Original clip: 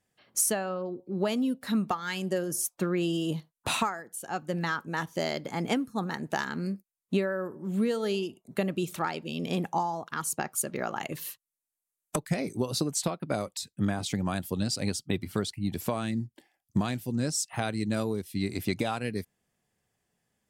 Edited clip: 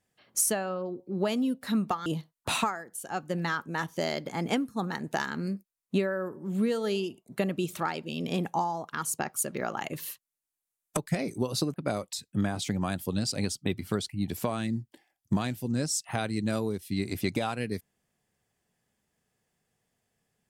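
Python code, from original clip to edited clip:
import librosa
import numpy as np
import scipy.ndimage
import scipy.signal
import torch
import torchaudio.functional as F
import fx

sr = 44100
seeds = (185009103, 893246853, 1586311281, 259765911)

y = fx.edit(x, sr, fx.cut(start_s=2.06, length_s=1.19),
    fx.cut(start_s=12.93, length_s=0.25), tone=tone)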